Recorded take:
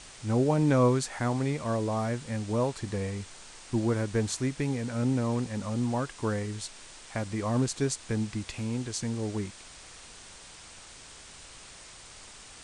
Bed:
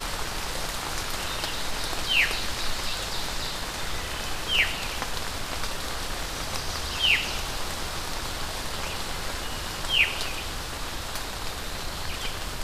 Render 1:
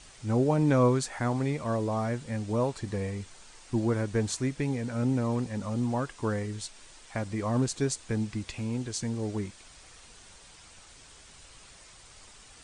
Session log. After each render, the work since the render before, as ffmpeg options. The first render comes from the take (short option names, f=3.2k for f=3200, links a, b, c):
-af "afftdn=nr=6:nf=-49"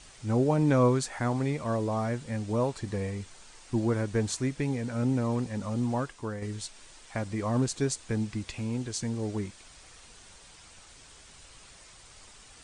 -filter_complex "[0:a]asplit=2[a][b];[a]atrim=end=6.42,asetpts=PTS-STARTPTS,afade=t=out:st=6.01:d=0.41:c=qua:silence=0.473151[c];[b]atrim=start=6.42,asetpts=PTS-STARTPTS,afade=t=in:d=0.004:c=hsin:silence=0.473151[d];[c][d]concat=n=2:v=0:a=1"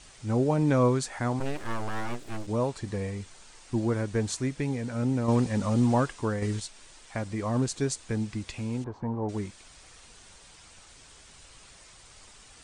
-filter_complex "[0:a]asplit=3[a][b][c];[a]afade=t=out:st=1.39:d=0.02[d];[b]aeval=exprs='abs(val(0))':c=same,afade=t=in:st=1.39:d=0.02,afade=t=out:st=2.46:d=0.02[e];[c]afade=t=in:st=2.46:d=0.02[f];[d][e][f]amix=inputs=3:normalize=0,asettb=1/sr,asplit=3[g][h][i];[g]atrim=end=5.284[j];[h]atrim=start=5.28:end=6.6,asetpts=PTS-STARTPTS,afade=t=in:d=0.004:c=qsin,afade=t=out:st=1.316:d=0.004:c=qsin,acontrast=53[k];[i]atrim=start=6.596[l];[j][k]acrossfade=d=0.004:c1=hsin:c2=qsin[m];[m][l]acrossfade=d=0.004:c1=qsin:c2=hsin,asettb=1/sr,asplit=3[n][o][p];[n]atrim=end=8.844[q];[o]atrim=start=8.84:end=9.29,asetpts=PTS-STARTPTS,afade=t=in:d=0.004:c=qsin,afade=t=out:st=0.446:d=0.004:c=qsin,lowpass=f=940:t=q:w=4.6[r];[p]atrim=start=9.286[s];[q][r]acrossfade=d=0.004:c1=hsin:c2=qsin[t];[t][s]acrossfade=d=0.004:c1=qsin:c2=hsin"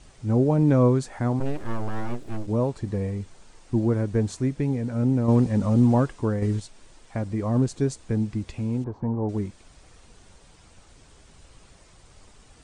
-af "tiltshelf=f=860:g=6"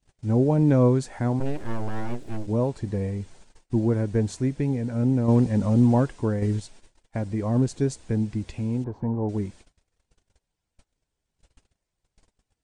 -af "agate=range=-30dB:threshold=-46dB:ratio=16:detection=peak,equalizer=f=1.2k:t=o:w=0.22:g=-6.5"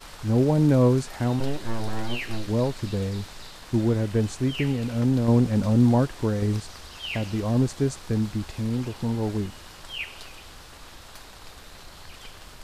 -filter_complex "[1:a]volume=-12dB[a];[0:a][a]amix=inputs=2:normalize=0"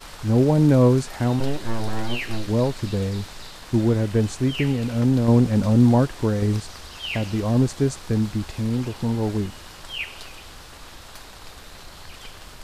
-af "volume=3dB"